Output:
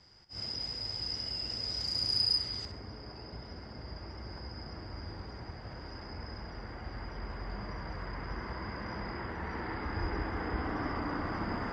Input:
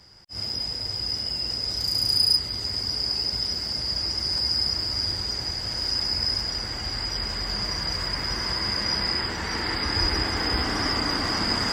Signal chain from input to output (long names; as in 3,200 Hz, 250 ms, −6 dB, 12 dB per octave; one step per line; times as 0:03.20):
low-pass filter 5,800 Hz 12 dB per octave, from 0:02.65 1,500 Hz
flutter between parallel walls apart 11 metres, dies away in 0.39 s
level −7 dB